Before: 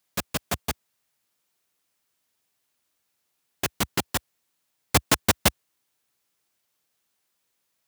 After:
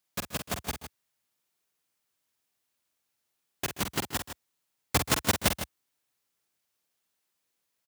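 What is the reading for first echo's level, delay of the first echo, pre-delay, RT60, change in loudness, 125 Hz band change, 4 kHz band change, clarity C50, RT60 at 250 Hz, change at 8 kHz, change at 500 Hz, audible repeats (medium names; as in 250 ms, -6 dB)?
-7.5 dB, 48 ms, no reverb, no reverb, -5.0 dB, -4.0 dB, -4.5 dB, no reverb, no reverb, -4.5 dB, -4.5 dB, 2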